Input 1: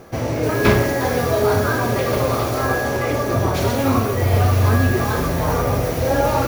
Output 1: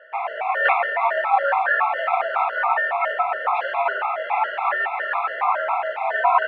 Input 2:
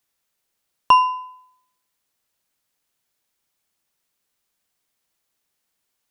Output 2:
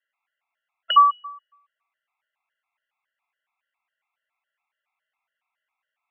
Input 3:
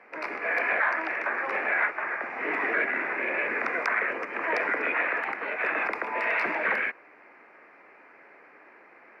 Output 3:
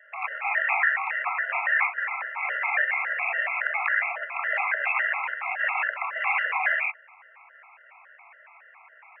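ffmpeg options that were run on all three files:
-af "highpass=f=570:t=q:w=0.5412,highpass=f=570:t=q:w=1.307,lowpass=f=2600:t=q:w=0.5176,lowpass=f=2600:t=q:w=0.7071,lowpass=f=2600:t=q:w=1.932,afreqshift=140,afftfilt=real='re*gt(sin(2*PI*3.6*pts/sr)*(1-2*mod(floor(b*sr/1024/680),2)),0)':imag='im*gt(sin(2*PI*3.6*pts/sr)*(1-2*mod(floor(b*sr/1024/680),2)),0)':win_size=1024:overlap=0.75,volume=1.88"

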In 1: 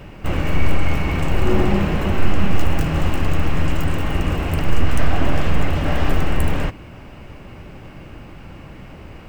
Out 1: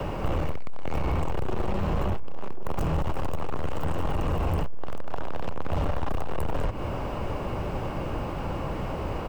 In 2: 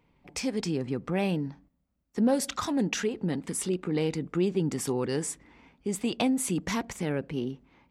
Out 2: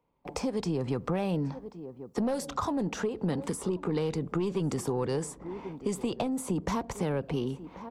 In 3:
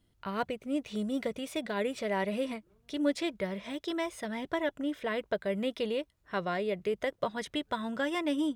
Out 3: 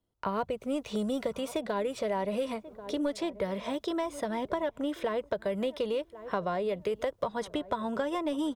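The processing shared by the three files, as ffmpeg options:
-filter_complex "[0:a]asoftclip=type=tanh:threshold=0.112,asplit=2[s0][s1];[s1]adelay=1086,lowpass=f=1000:p=1,volume=0.0891,asplit=2[s2][s3];[s3]adelay=1086,lowpass=f=1000:p=1,volume=0.27[s4];[s2][s4]amix=inputs=2:normalize=0[s5];[s0][s5]amix=inputs=2:normalize=0,acompressor=threshold=0.0501:ratio=6,equalizer=f=500:t=o:w=1:g=7,equalizer=f=1000:t=o:w=1:g=8,equalizer=f=2000:t=o:w=1:g=-5,agate=range=0.112:threshold=0.00178:ratio=16:detection=peak,acrossover=split=140|1300[s6][s7][s8];[s6]acompressor=threshold=0.0355:ratio=4[s9];[s7]acompressor=threshold=0.0126:ratio=4[s10];[s8]acompressor=threshold=0.00355:ratio=4[s11];[s9][s10][s11]amix=inputs=3:normalize=0,volume=2.11"

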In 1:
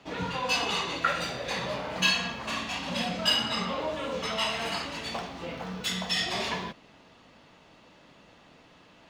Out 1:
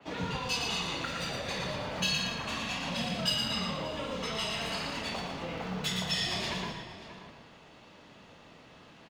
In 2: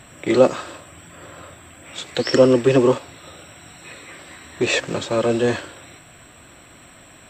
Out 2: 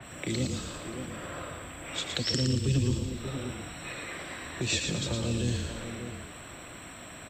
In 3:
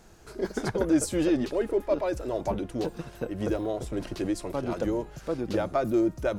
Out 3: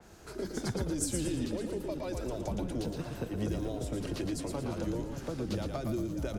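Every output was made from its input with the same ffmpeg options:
-filter_complex "[0:a]highpass=43,acrossover=split=230|3200[s0][s1][s2];[s1]acompressor=threshold=0.0178:ratio=6[s3];[s0][s3][s2]amix=inputs=3:normalize=0,asplit=2[s4][s5];[s5]adelay=583.1,volume=0.224,highshelf=f=4000:g=-13.1[s6];[s4][s6]amix=inputs=2:normalize=0,acrossover=split=190|3000[s7][s8][s9];[s8]acompressor=threshold=0.02:ratio=6[s10];[s7][s10][s9]amix=inputs=3:normalize=0,asplit=2[s11][s12];[s12]asplit=5[s13][s14][s15][s16][s17];[s13]adelay=115,afreqshift=-31,volume=0.562[s18];[s14]adelay=230,afreqshift=-62,volume=0.232[s19];[s15]adelay=345,afreqshift=-93,volume=0.0944[s20];[s16]adelay=460,afreqshift=-124,volume=0.0389[s21];[s17]adelay=575,afreqshift=-155,volume=0.0158[s22];[s18][s19][s20][s21][s22]amix=inputs=5:normalize=0[s23];[s11][s23]amix=inputs=2:normalize=0,adynamicequalizer=threshold=0.00398:dfrequency=3700:dqfactor=0.7:tfrequency=3700:tqfactor=0.7:attack=5:release=100:ratio=0.375:range=1.5:mode=cutabove:tftype=highshelf"

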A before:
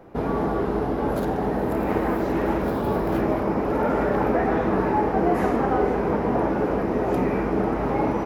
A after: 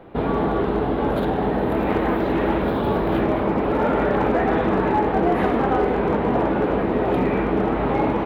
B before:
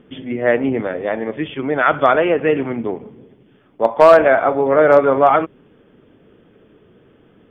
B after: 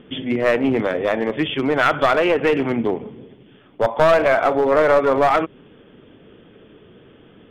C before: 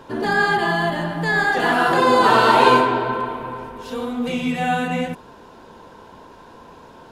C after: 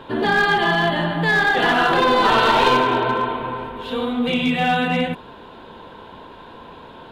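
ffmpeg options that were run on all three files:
-af "acompressor=threshold=0.126:ratio=2,highshelf=f=4500:t=q:w=3:g=-8,aeval=exprs='clip(val(0),-1,0.158)':c=same,volume=1.41"

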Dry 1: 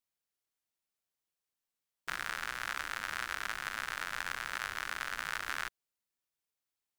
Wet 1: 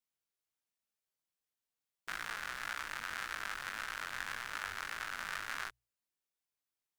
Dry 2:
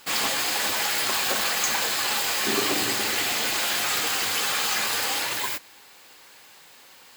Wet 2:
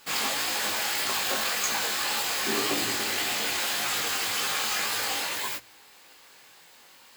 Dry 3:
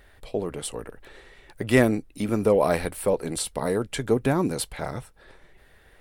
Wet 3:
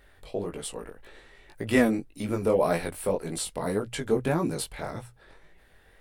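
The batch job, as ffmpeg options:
-af "flanger=delay=17.5:depth=4.9:speed=1.8,bandreject=f=60:t=h:w=6,bandreject=f=120:t=h:w=6"

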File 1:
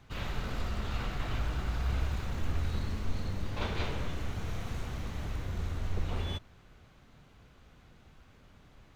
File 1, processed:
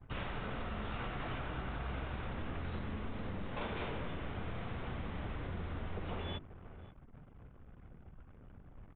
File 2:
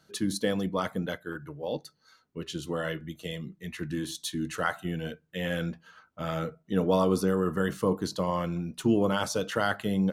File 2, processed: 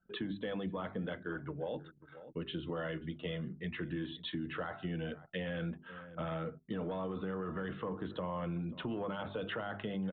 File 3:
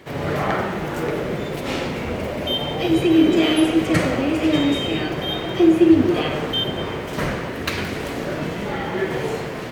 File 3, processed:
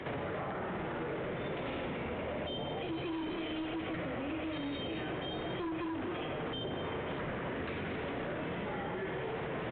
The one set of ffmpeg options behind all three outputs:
-filter_complex "[0:a]aresample=8000,asoftclip=type=tanh:threshold=0.188,aresample=44100,acrossover=split=130|760[s0][s1][s2];[s0]acompressor=threshold=0.00794:ratio=4[s3];[s1]acompressor=threshold=0.0282:ratio=4[s4];[s2]acompressor=threshold=0.02:ratio=4[s5];[s3][s4][s5]amix=inputs=3:normalize=0,bandreject=f=50:t=h:w=6,bandreject=f=100:t=h:w=6,bandreject=f=150:t=h:w=6,bandreject=f=200:t=h:w=6,bandreject=f=250:t=h:w=6,bandreject=f=300:t=h:w=6,bandreject=f=350:t=h:w=6,bandreject=f=400:t=h:w=6,alimiter=level_in=1.41:limit=0.0631:level=0:latency=1:release=17,volume=0.708,asplit=2[s6][s7];[s7]adelay=536.4,volume=0.1,highshelf=f=4000:g=-12.1[s8];[s6][s8]amix=inputs=2:normalize=0,anlmdn=0.0001,lowpass=f=2800:p=1,acompressor=threshold=0.00708:ratio=2.5,volume=1.68"

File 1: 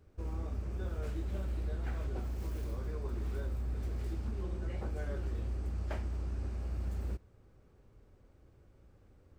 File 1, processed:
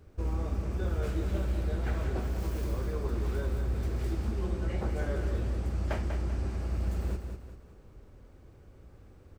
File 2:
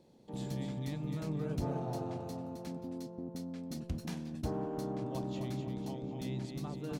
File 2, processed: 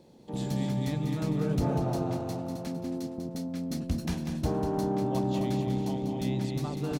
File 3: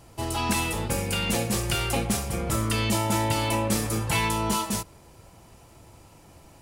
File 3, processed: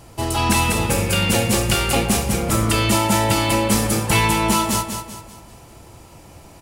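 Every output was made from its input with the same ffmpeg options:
-af "aecho=1:1:194|388|582|776|970:0.447|0.179|0.0715|0.0286|0.0114,volume=2.24"

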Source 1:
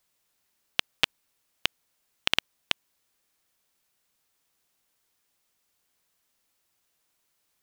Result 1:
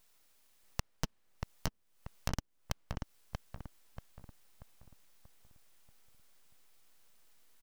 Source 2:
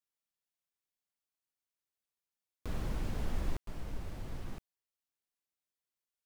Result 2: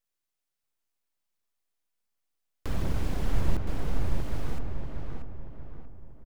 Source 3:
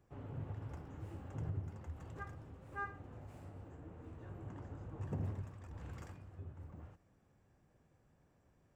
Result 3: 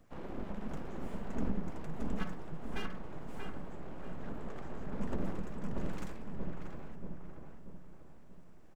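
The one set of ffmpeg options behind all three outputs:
-filter_complex "[0:a]acrossover=split=270[s0][s1];[s1]acompressor=threshold=0.00562:ratio=8[s2];[s0][s2]amix=inputs=2:normalize=0,aphaser=in_gain=1:out_gain=1:delay=4.9:decay=0.29:speed=1.4:type=triangular,aeval=exprs='abs(val(0))':c=same,asplit=2[s3][s4];[s4]adelay=635,lowpass=f=1800:p=1,volume=0.708,asplit=2[s5][s6];[s6]adelay=635,lowpass=f=1800:p=1,volume=0.45,asplit=2[s7][s8];[s8]adelay=635,lowpass=f=1800:p=1,volume=0.45,asplit=2[s9][s10];[s10]adelay=635,lowpass=f=1800:p=1,volume=0.45,asplit=2[s11][s12];[s12]adelay=635,lowpass=f=1800:p=1,volume=0.45,asplit=2[s13][s14];[s14]adelay=635,lowpass=f=1800:p=1,volume=0.45[s15];[s3][s5][s7][s9][s11][s13][s15]amix=inputs=7:normalize=0,volume=2.37"

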